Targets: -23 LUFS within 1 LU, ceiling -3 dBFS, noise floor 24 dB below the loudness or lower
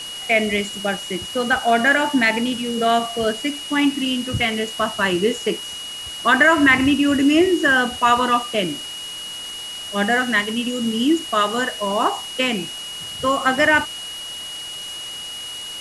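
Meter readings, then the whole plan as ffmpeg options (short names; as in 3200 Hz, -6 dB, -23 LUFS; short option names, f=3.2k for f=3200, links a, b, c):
steady tone 2900 Hz; tone level -30 dBFS; noise floor -32 dBFS; noise floor target -44 dBFS; loudness -19.5 LUFS; peak -3.0 dBFS; loudness target -23.0 LUFS
-> -af "bandreject=f=2.9k:w=30"
-af "afftdn=nr=12:nf=-32"
-af "volume=-3.5dB"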